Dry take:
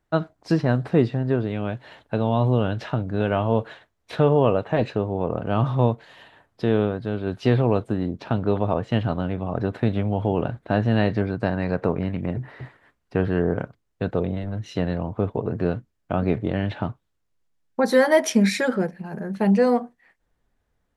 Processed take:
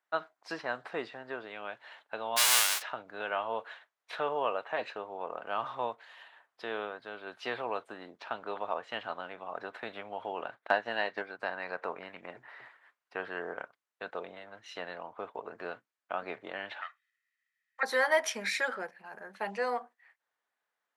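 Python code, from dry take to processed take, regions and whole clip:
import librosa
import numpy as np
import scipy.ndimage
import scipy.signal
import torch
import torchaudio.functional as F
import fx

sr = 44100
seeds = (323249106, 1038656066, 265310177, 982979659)

y = fx.envelope_flatten(x, sr, power=0.1, at=(2.36, 2.81), fade=0.02)
y = fx.peak_eq(y, sr, hz=7900.0, db=5.5, octaves=2.3, at=(2.36, 2.81), fade=0.02)
y = fx.chain(y, sr, fx.low_shelf(hz=140.0, db=-6.0),
    fx.transient(attack_db=9, sustain_db=-6), at=(10.5, 11.39))
y = fx.chain(y, sr, fx.highpass_res(hz=1900.0, q=7.3),
    fx.comb(ms=1.6, depth=0.54), at=(16.81, 17.83))
y = scipy.signal.sosfilt(scipy.signal.butter(2, 1100.0, 'highpass', fs=sr, output='sos'), y)
y = fx.high_shelf(y, sr, hz=2800.0, db=-9.5)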